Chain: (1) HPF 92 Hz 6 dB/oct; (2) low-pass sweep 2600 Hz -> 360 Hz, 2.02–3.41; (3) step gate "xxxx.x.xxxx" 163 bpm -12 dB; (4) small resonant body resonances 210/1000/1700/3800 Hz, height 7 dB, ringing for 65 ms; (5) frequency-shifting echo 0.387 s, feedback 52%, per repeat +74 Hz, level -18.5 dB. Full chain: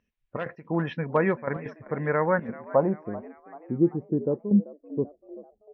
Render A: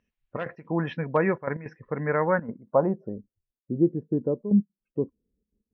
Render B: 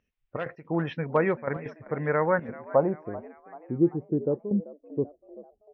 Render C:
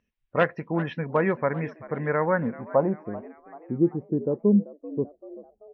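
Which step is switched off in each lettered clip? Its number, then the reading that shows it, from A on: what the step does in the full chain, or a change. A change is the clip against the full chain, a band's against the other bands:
5, echo-to-direct -17.0 dB to none; 4, 250 Hz band -2.0 dB; 3, momentary loudness spread change -1 LU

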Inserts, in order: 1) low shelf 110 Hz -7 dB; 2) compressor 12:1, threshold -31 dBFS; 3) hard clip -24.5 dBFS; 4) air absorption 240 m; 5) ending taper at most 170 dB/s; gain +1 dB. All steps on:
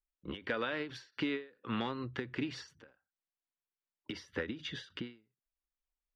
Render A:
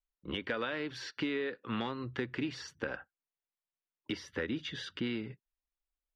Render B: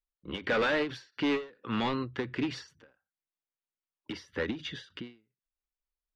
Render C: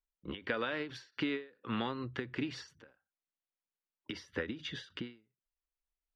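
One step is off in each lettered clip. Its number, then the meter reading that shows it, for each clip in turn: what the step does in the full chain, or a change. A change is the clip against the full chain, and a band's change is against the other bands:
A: 5, crest factor change -2.0 dB; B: 2, mean gain reduction 6.5 dB; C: 3, distortion -22 dB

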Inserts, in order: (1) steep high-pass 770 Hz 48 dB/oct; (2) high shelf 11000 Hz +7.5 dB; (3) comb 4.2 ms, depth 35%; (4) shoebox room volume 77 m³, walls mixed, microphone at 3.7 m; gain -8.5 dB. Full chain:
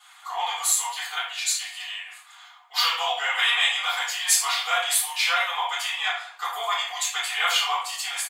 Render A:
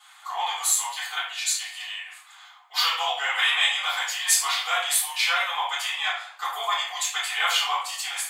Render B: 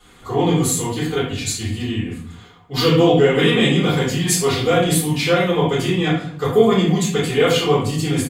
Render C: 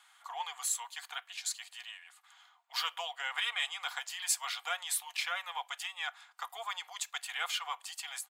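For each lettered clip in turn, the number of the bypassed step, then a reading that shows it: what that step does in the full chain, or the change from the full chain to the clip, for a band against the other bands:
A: 3, 500 Hz band -1.5 dB; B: 1, 500 Hz band +23.0 dB; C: 4, echo-to-direct 12.5 dB to none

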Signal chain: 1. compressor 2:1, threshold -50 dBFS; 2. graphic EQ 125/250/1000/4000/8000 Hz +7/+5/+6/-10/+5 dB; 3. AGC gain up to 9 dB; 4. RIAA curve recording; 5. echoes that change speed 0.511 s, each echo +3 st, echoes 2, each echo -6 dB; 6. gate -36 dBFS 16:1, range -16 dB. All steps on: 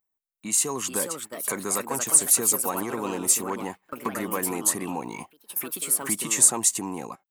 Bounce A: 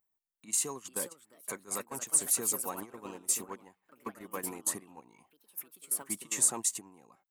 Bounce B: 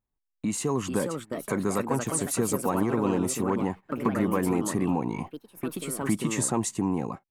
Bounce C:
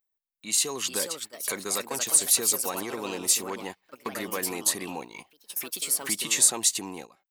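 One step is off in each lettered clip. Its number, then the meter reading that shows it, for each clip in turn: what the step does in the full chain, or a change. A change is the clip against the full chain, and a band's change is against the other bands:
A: 3, momentary loudness spread change +2 LU; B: 4, 8 kHz band -14.0 dB; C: 2, momentary loudness spread change +1 LU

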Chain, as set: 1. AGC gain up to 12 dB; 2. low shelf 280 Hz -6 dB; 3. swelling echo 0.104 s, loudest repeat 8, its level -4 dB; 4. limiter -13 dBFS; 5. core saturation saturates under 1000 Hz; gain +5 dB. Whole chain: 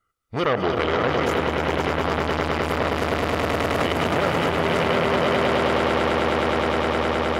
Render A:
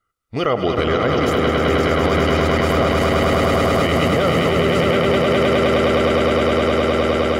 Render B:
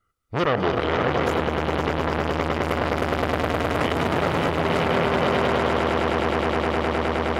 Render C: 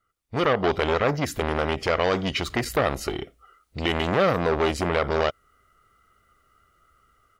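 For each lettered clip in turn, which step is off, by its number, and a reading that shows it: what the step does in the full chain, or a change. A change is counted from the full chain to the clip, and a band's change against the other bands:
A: 5, crest factor change -5.5 dB; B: 2, 125 Hz band +2.0 dB; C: 3, momentary loudness spread change +6 LU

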